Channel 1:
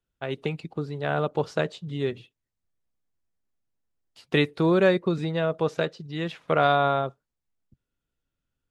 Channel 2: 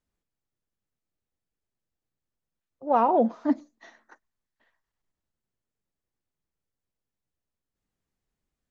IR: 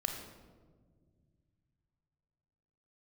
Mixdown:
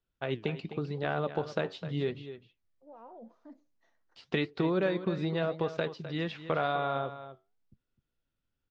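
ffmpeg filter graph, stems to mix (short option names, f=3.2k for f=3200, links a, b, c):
-filter_complex "[0:a]lowpass=f=5.6k:w=0.5412,lowpass=f=5.6k:w=1.3066,acompressor=threshold=-25dB:ratio=4,volume=2.5dB,asplit=2[a][b];[b]volume=-12.5dB[c];[1:a]equalizer=f=510:w=3.6:g=6,alimiter=limit=-20dB:level=0:latency=1:release=17,volume=-18.5dB[d];[c]aecho=0:1:256:1[e];[a][d][e]amix=inputs=3:normalize=0,flanger=delay=2.5:depth=8.1:regen=81:speed=0.88:shape=sinusoidal"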